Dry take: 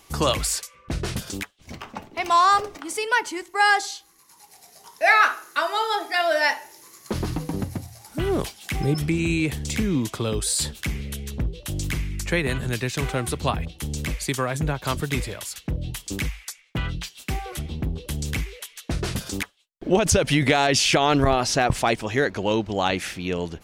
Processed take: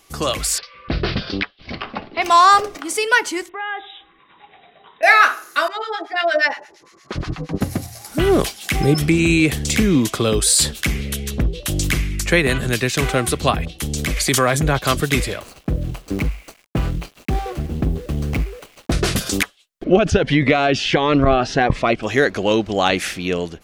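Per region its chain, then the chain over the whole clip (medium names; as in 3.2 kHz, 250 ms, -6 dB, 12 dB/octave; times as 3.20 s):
0.58–2.22 s: steep low-pass 5 kHz 72 dB/octave + tape noise reduction on one side only encoder only
3.49–5.03 s: compression 2.5:1, threshold -40 dBFS + brick-wall FIR low-pass 3.9 kHz
5.68–7.61 s: harmonic tremolo 8.6 Hz, depth 100%, crossover 1 kHz + distance through air 130 m
13.97–14.79 s: band-stop 2.7 kHz, Q 26 + transient shaper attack -2 dB, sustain +8 dB
15.40–18.92 s: median filter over 25 samples + word length cut 10-bit, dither none
19.84–22.03 s: low-pass 2.7 kHz + Shepard-style phaser rising 1.5 Hz
whole clip: peaking EQ 97 Hz -5 dB 1.7 oct; band-stop 910 Hz, Q 7.8; level rider gain up to 10 dB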